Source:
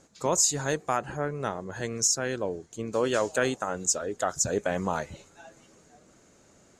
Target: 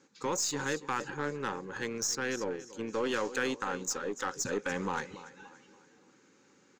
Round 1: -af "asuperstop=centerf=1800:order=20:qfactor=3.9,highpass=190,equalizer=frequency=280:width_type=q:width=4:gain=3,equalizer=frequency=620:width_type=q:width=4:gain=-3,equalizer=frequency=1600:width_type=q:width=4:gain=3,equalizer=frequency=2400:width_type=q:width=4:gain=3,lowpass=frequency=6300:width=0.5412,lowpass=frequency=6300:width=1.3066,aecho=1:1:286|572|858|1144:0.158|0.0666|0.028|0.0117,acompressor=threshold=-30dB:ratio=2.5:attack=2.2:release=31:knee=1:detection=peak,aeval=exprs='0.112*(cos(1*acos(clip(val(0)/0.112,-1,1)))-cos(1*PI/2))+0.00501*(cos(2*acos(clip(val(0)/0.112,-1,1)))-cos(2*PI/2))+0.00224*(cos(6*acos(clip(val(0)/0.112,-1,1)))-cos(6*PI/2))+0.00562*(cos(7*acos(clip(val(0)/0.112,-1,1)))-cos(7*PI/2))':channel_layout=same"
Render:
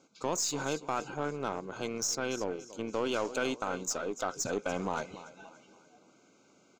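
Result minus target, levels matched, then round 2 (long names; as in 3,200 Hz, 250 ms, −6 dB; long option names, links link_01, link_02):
2,000 Hz band −3.5 dB
-af "asuperstop=centerf=660:order=20:qfactor=3.9,highpass=190,equalizer=frequency=280:width_type=q:width=4:gain=3,equalizer=frequency=620:width_type=q:width=4:gain=-3,equalizer=frequency=1600:width_type=q:width=4:gain=3,equalizer=frequency=2400:width_type=q:width=4:gain=3,lowpass=frequency=6300:width=0.5412,lowpass=frequency=6300:width=1.3066,aecho=1:1:286|572|858|1144:0.158|0.0666|0.028|0.0117,acompressor=threshold=-30dB:ratio=2.5:attack=2.2:release=31:knee=1:detection=peak,aeval=exprs='0.112*(cos(1*acos(clip(val(0)/0.112,-1,1)))-cos(1*PI/2))+0.00501*(cos(2*acos(clip(val(0)/0.112,-1,1)))-cos(2*PI/2))+0.00224*(cos(6*acos(clip(val(0)/0.112,-1,1)))-cos(6*PI/2))+0.00562*(cos(7*acos(clip(val(0)/0.112,-1,1)))-cos(7*PI/2))':channel_layout=same"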